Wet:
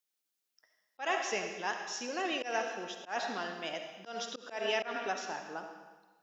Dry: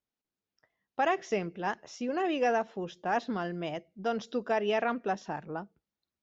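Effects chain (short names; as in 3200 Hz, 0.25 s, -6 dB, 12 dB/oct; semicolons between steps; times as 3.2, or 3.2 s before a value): tilt +2 dB/oct; on a send at -4.5 dB: reverb RT60 1.3 s, pre-delay 25 ms; on the sum: auto swell 0.146 s; HPF 220 Hz 12 dB/oct; high shelf 2200 Hz +7.5 dB; gain -4.5 dB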